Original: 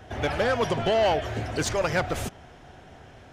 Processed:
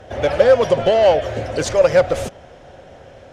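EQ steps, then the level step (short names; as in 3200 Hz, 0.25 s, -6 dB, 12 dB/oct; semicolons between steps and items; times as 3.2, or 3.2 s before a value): air absorption 51 m; bell 540 Hz +15 dB 0.36 oct; high shelf 6100 Hz +8.5 dB; +3.0 dB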